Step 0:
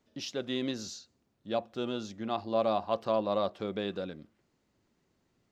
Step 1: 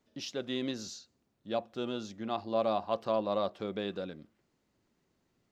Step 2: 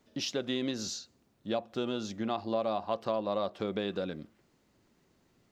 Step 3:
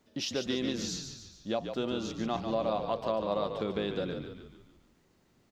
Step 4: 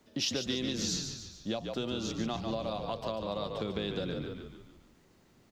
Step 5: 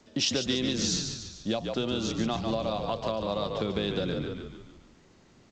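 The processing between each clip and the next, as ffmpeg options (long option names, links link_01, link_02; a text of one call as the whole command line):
ffmpeg -i in.wav -af "equalizer=frequency=86:width_type=o:width=0.77:gain=-2,volume=-1.5dB" out.wav
ffmpeg -i in.wav -af "acompressor=threshold=-37dB:ratio=3,volume=7dB" out.wav
ffmpeg -i in.wav -filter_complex "[0:a]asplit=7[link_01][link_02][link_03][link_04][link_05][link_06][link_07];[link_02]adelay=144,afreqshift=-41,volume=-7dB[link_08];[link_03]adelay=288,afreqshift=-82,volume=-13dB[link_09];[link_04]adelay=432,afreqshift=-123,volume=-19dB[link_10];[link_05]adelay=576,afreqshift=-164,volume=-25.1dB[link_11];[link_06]adelay=720,afreqshift=-205,volume=-31.1dB[link_12];[link_07]adelay=864,afreqshift=-246,volume=-37.1dB[link_13];[link_01][link_08][link_09][link_10][link_11][link_12][link_13]amix=inputs=7:normalize=0" out.wav
ffmpeg -i in.wav -filter_complex "[0:a]acrossover=split=150|3000[link_01][link_02][link_03];[link_02]acompressor=threshold=-37dB:ratio=6[link_04];[link_01][link_04][link_03]amix=inputs=3:normalize=0,volume=4dB" out.wav
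ffmpeg -i in.wav -af "volume=5dB" -ar 16000 -c:a g722 out.g722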